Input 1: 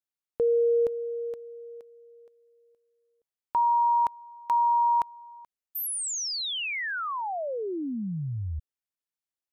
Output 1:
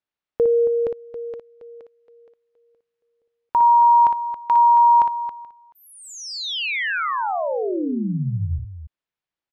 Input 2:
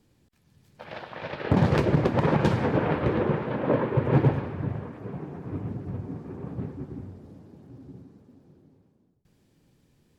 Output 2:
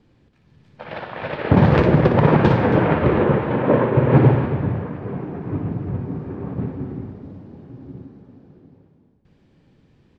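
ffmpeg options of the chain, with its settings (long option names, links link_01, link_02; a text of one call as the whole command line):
ffmpeg -i in.wav -filter_complex "[0:a]lowpass=3300,asplit=2[link_01][link_02];[link_02]aecho=0:1:58.31|274.1:0.447|0.282[link_03];[link_01][link_03]amix=inputs=2:normalize=0,volume=7dB" out.wav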